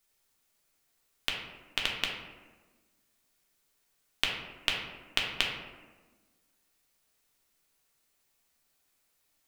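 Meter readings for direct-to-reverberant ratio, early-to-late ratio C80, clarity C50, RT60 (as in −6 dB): −2.0 dB, 6.0 dB, 3.0 dB, 1.3 s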